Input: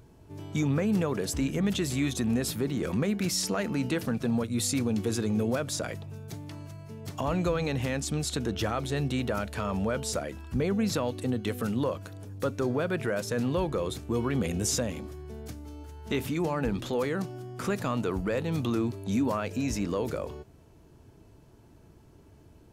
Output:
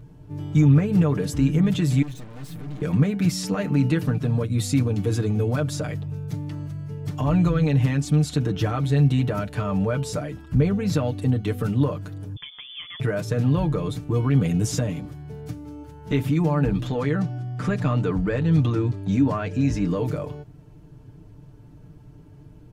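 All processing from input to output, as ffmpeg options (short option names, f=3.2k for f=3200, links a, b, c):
-filter_complex "[0:a]asettb=1/sr,asplit=3[a][b][c];[a]atrim=end=2.024[d];[b]atrim=start=2.02:end=2.82,asetpts=PTS-STARTPTS,afade=t=in:d=0.004:c=qsin,afade=t=out:st=0.796:d=0.004:c=qsin,highpass=100,aecho=1:1:6.2:0.43,atrim=end_sample=35280,aeval=exprs='(tanh(141*val(0)+0.25)-tanh(0.25))/141':c=same[e];[c]atrim=start=2.816[f];[d][e]acrossfade=d=0.004:c1=hsin:c2=qsin[g];[g][f]acrossfade=d=0.004:c1=qsin:c2=hsin,asettb=1/sr,asplit=3[h][i][j];[h]atrim=end=12.364[k];[i]atrim=start=12.36:end=13,asetpts=PTS-STARTPTS,afade=t=in:d=0.004:c=qsin,afade=t=out:st=0.636:d=0.004:c=qsin,equalizer=f=230:t=o:w=0.31:g=-14.5,acompressor=threshold=-35dB:ratio=5:attack=3.2:release=140:knee=1:detection=peak,lowpass=f=3.1k:t=q:w=0.5098,lowpass=f=3.1k:t=q:w=0.6013,lowpass=f=3.1k:t=q:w=0.9,lowpass=f=3.1k:t=q:w=2.563,afreqshift=-3600[l];[j]atrim=start=12.996[m];[k][l]acrossfade=d=0.004:c1=hsin:c2=qsin[n];[n][m]acrossfade=d=0.004:c1=qsin:c2=hsin,asettb=1/sr,asplit=3[o][p][q];[o]atrim=end=16.874[r];[p]atrim=start=16.87:end=19.84,asetpts=PTS-STARTPTS,afade=t=in:d=0.004:c=qsin,afade=t=out:st=2.966:d=0.004:c=qsin,lowpass=7.8k,equalizer=f=1.7k:t=o:w=0.33:g=3[s];[q]atrim=start=19.836[t];[r][s]acrossfade=d=0.004:c1=hsin:c2=qsin[u];[u][t]acrossfade=d=0.004:c1=qsin:c2=hsin,bass=f=250:g=10,treble=f=4k:g=-5,aecho=1:1:6.7:0.76"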